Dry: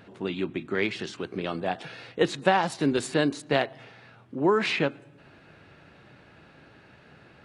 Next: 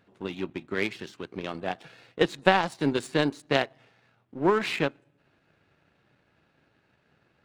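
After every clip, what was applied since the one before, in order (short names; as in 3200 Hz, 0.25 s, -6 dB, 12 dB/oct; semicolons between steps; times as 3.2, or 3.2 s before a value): power-law curve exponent 1.4; gain +4 dB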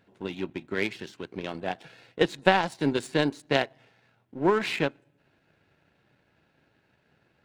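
notch 1200 Hz, Q 9.2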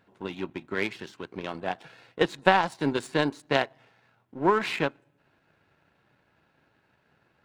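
bell 1100 Hz +6 dB 1 oct; gain -1.5 dB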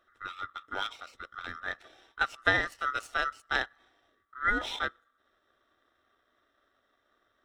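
band-swap scrambler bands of 1000 Hz; gain -5.5 dB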